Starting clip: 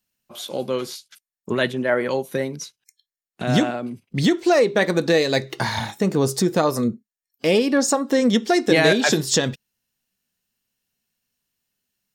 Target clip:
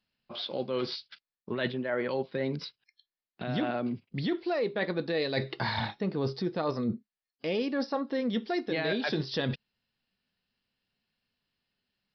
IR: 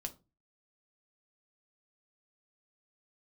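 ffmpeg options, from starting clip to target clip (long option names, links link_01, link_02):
-af "aresample=11025,aresample=44100,areverse,acompressor=threshold=-28dB:ratio=6,areverse"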